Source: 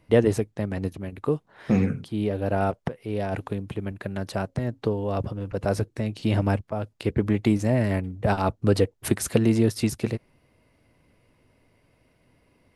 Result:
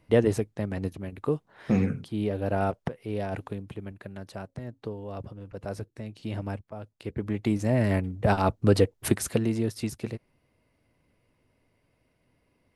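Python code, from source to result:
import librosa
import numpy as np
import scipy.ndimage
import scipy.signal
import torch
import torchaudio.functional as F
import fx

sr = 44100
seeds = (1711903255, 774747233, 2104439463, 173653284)

y = fx.gain(x, sr, db=fx.line((3.1, -2.5), (4.27, -10.5), (7.03, -10.5), (7.89, 0.0), (9.07, 0.0), (9.52, -7.0)))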